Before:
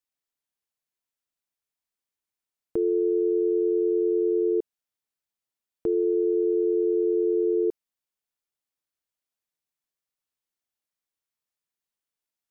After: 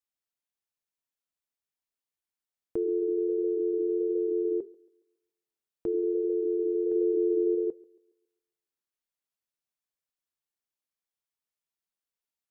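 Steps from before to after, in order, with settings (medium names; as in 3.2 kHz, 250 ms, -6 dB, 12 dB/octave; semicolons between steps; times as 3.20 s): 6.91–7.55 s: dynamic bell 310 Hz, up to +3 dB, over -37 dBFS, Q 0.92; flange 1.4 Hz, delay 1.2 ms, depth 5.3 ms, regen -82%; on a send: thinning echo 138 ms, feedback 45%, high-pass 220 Hz, level -22 dB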